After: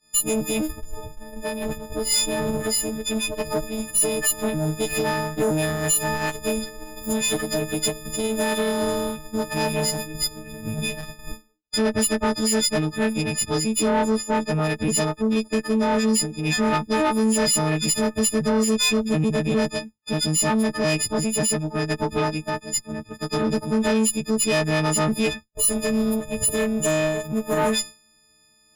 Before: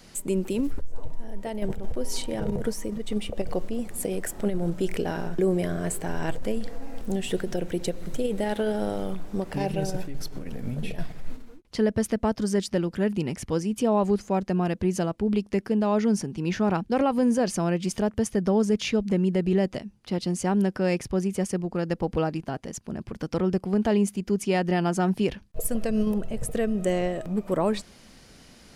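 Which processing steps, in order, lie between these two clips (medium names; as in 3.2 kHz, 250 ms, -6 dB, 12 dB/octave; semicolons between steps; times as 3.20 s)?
partials quantised in pitch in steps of 6 st; expander -29 dBFS; valve stage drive 21 dB, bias 0.5; trim +5.5 dB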